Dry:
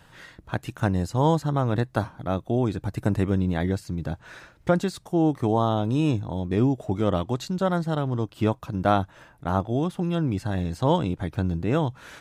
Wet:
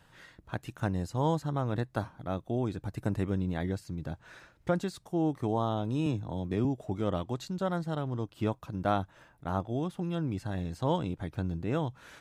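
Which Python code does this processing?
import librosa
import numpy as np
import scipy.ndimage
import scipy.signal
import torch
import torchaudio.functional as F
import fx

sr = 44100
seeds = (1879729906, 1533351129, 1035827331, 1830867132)

y = fx.band_squash(x, sr, depth_pct=40, at=(6.06, 6.65))
y = F.gain(torch.from_numpy(y), -7.5).numpy()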